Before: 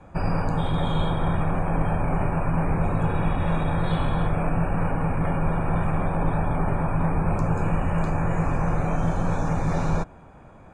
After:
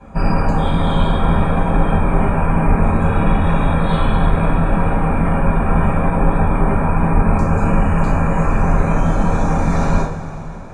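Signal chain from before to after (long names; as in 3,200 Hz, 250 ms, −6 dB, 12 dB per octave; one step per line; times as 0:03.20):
coupled-rooms reverb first 0.32 s, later 3.8 s, from −18 dB, DRR −6.5 dB
level +1 dB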